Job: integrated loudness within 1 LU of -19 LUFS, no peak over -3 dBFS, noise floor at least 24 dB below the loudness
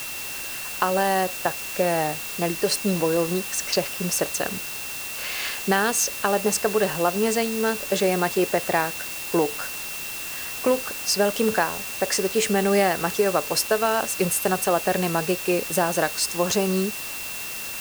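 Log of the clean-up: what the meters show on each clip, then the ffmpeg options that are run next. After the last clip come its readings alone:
steady tone 2700 Hz; tone level -36 dBFS; noise floor -33 dBFS; noise floor target -48 dBFS; loudness -23.5 LUFS; peak -6.5 dBFS; loudness target -19.0 LUFS
-> -af "bandreject=f=2.7k:w=30"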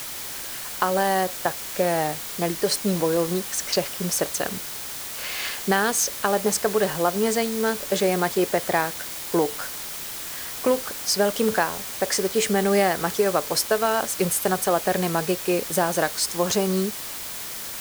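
steady tone none; noise floor -34 dBFS; noise floor target -48 dBFS
-> -af "afftdn=nr=14:nf=-34"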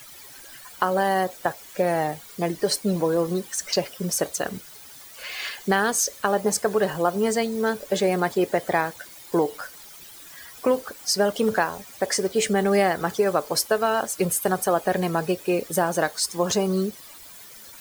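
noise floor -45 dBFS; noise floor target -48 dBFS
-> -af "afftdn=nr=6:nf=-45"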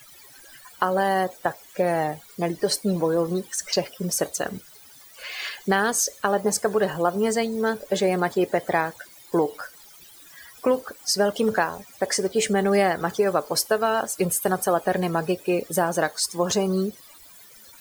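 noise floor -49 dBFS; loudness -24.0 LUFS; peak -7.0 dBFS; loudness target -19.0 LUFS
-> -af "volume=5dB,alimiter=limit=-3dB:level=0:latency=1"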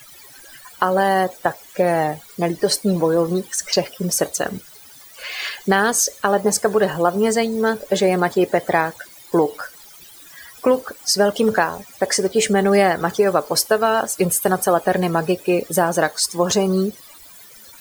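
loudness -19.0 LUFS; peak -3.0 dBFS; noise floor -44 dBFS

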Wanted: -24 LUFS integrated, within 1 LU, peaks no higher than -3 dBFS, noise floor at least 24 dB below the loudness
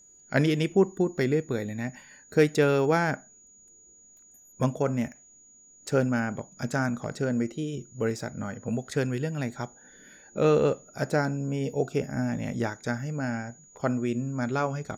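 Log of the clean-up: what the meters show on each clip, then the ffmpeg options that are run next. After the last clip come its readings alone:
steady tone 6800 Hz; tone level -53 dBFS; loudness -28.0 LUFS; peak -10.5 dBFS; loudness target -24.0 LUFS
-> -af "bandreject=f=6.8k:w=30"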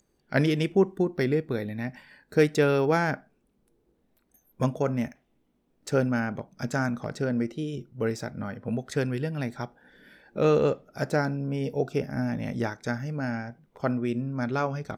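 steady tone none; loudness -28.0 LUFS; peak -10.5 dBFS; loudness target -24.0 LUFS
-> -af "volume=4dB"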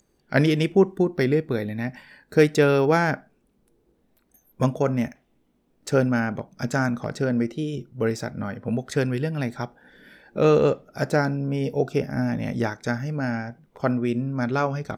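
loudness -24.0 LUFS; peak -6.5 dBFS; noise floor -67 dBFS

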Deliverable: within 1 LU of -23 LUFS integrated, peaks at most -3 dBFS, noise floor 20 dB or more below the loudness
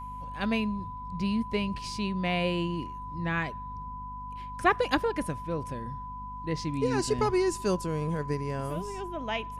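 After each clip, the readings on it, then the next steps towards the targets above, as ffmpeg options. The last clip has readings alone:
hum 50 Hz; harmonics up to 250 Hz; hum level -42 dBFS; steady tone 1000 Hz; tone level -38 dBFS; loudness -31.0 LUFS; peak -10.0 dBFS; loudness target -23.0 LUFS
-> -af "bandreject=f=50:t=h:w=6,bandreject=f=100:t=h:w=6,bandreject=f=150:t=h:w=6,bandreject=f=200:t=h:w=6,bandreject=f=250:t=h:w=6"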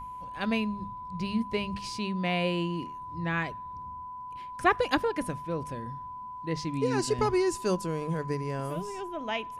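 hum none; steady tone 1000 Hz; tone level -38 dBFS
-> -af "bandreject=f=1k:w=30"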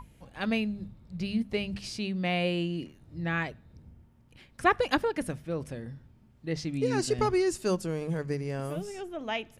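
steady tone none; loudness -31.0 LUFS; peak -10.0 dBFS; loudness target -23.0 LUFS
-> -af "volume=8dB,alimiter=limit=-3dB:level=0:latency=1"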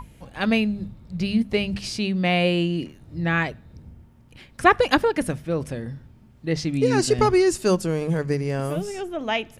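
loudness -23.0 LUFS; peak -3.0 dBFS; noise floor -51 dBFS

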